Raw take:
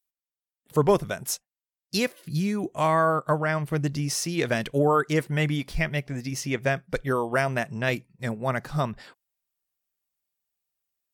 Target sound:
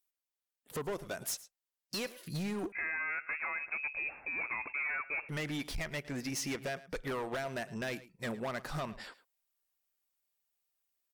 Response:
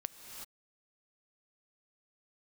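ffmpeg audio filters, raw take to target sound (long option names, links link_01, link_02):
-filter_complex "[0:a]equalizer=frequency=120:width=0.81:gain=-10.5,acompressor=threshold=-29dB:ratio=10,asoftclip=type=hard:threshold=-33dB,aecho=1:1:109:0.126,asettb=1/sr,asplit=3[link_01][link_02][link_03];[link_01]atrim=end=2.724[link_04];[link_02]atrim=start=2.72:end=5.29,asetpts=PTS-STARTPTS,afade=type=in:duration=0.004:curve=qsin,afade=type=out:start_time=2.566:duration=0.004:curve=qsin,lowpass=frequency=2300:width_type=q:width=0.5098,lowpass=frequency=2300:width_type=q:width=0.6013,lowpass=frequency=2300:width_type=q:width=0.9,lowpass=frequency=2300:width_type=q:width=2.563,afreqshift=-2700[link_05];[link_03]atrim=start=5.286[link_06];[link_04][link_05]acrossfade=duration=0.004:curve1=hsin:curve2=qsin[link_07];[link_07][link_06]acrossfade=duration=0.004:curve1=qsin:curve2=hsin"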